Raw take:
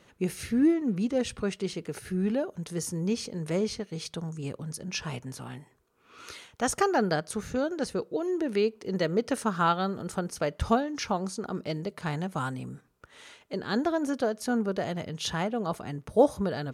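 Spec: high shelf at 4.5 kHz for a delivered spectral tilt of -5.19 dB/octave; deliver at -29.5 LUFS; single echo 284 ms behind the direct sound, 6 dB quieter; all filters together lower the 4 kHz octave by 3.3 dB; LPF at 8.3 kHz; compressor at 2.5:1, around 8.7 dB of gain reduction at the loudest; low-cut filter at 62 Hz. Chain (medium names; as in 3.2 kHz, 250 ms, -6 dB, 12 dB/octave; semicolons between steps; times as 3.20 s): high-pass 62 Hz; low-pass 8.3 kHz; peaking EQ 4 kHz -8.5 dB; treble shelf 4.5 kHz +7.5 dB; compression 2.5:1, threshold -28 dBFS; delay 284 ms -6 dB; trim +3 dB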